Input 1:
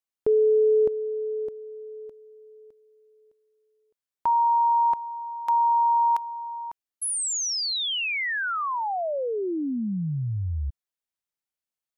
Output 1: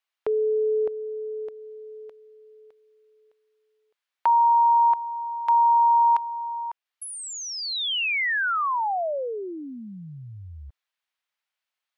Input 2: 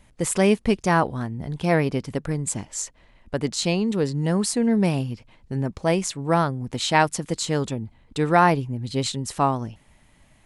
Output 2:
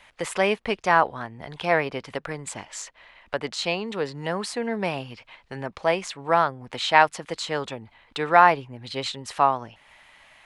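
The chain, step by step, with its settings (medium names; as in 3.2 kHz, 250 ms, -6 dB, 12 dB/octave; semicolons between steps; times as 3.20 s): three-band isolator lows -16 dB, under 520 Hz, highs -16 dB, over 4 kHz; tape noise reduction on one side only encoder only; trim +3.5 dB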